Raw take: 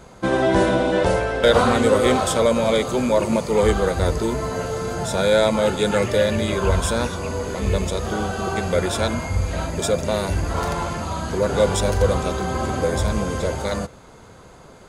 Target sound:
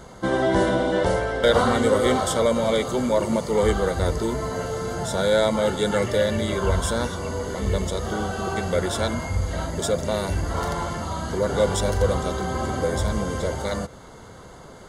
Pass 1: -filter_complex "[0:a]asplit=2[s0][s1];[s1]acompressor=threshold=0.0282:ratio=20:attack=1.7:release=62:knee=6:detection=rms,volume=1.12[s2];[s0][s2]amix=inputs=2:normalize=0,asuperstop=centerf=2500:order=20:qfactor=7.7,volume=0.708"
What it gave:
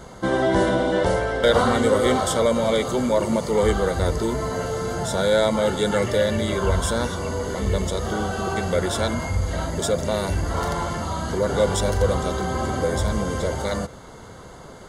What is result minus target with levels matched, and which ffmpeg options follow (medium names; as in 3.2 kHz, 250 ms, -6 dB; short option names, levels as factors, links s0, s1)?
compression: peak gain reduction -11.5 dB
-filter_complex "[0:a]asplit=2[s0][s1];[s1]acompressor=threshold=0.00708:ratio=20:attack=1.7:release=62:knee=6:detection=rms,volume=1.12[s2];[s0][s2]amix=inputs=2:normalize=0,asuperstop=centerf=2500:order=20:qfactor=7.7,volume=0.708"